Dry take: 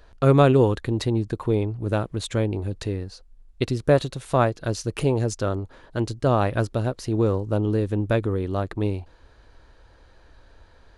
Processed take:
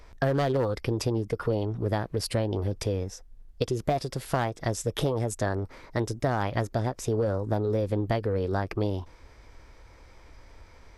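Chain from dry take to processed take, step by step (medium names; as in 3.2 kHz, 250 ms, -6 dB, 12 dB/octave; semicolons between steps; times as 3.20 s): overload inside the chain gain 12 dB; formant shift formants +4 st; compression 6:1, threshold -24 dBFS, peak gain reduction 10 dB; trim +1 dB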